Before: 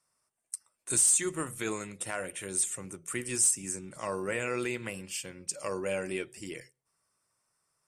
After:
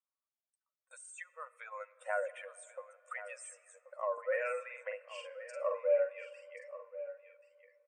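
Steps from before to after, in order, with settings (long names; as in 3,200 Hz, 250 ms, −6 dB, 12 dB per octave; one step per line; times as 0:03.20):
expanding power law on the bin magnitudes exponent 1.9
low-pass filter 1,800 Hz 12 dB per octave
noise gate −55 dBFS, range −19 dB
speech leveller 2 s
linear-phase brick-wall high-pass 490 Hz
0:04.13–0:06.47: double-tracking delay 46 ms −4 dB
single-tap delay 1,082 ms −14 dB
comb and all-pass reverb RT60 3.2 s, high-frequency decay 0.55×, pre-delay 20 ms, DRR 19.5 dB
level +1 dB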